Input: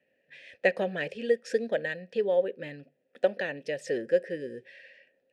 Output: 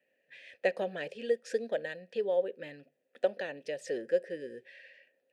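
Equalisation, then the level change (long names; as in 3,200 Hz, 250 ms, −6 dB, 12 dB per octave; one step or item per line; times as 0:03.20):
notch filter 5,400 Hz, Q 21
dynamic equaliser 2,000 Hz, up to −6 dB, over −44 dBFS, Q 1.3
low-shelf EQ 210 Hz −11.5 dB
−2.0 dB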